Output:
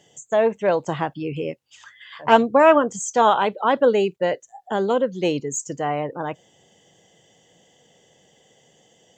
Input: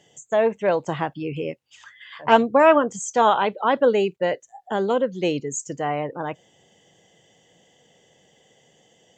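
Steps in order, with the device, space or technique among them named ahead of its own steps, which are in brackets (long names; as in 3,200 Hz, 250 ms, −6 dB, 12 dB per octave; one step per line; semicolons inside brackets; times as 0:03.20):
exciter from parts (in parallel at −12 dB: high-pass filter 2,000 Hz 24 dB per octave + soft clipping −27.5 dBFS, distortion −11 dB)
0:05.25–0:05.70: on the sum: parametric band 1,000 Hz +8.5 dB 0.41 octaves
level +1 dB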